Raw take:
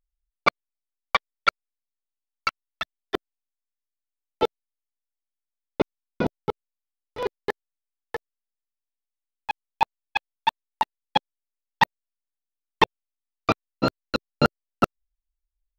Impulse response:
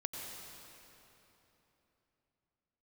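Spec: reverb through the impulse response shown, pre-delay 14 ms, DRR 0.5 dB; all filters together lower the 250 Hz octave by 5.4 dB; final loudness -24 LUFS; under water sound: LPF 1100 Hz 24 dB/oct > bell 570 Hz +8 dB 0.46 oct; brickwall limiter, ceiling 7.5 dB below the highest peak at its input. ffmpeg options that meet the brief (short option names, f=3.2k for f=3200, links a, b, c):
-filter_complex "[0:a]equalizer=f=250:t=o:g=-8,alimiter=limit=-9.5dB:level=0:latency=1,asplit=2[a][b];[1:a]atrim=start_sample=2205,adelay=14[c];[b][c]afir=irnorm=-1:irlink=0,volume=-1dB[d];[a][d]amix=inputs=2:normalize=0,lowpass=f=1.1k:w=0.5412,lowpass=f=1.1k:w=1.3066,equalizer=f=570:t=o:w=0.46:g=8,volume=5.5dB"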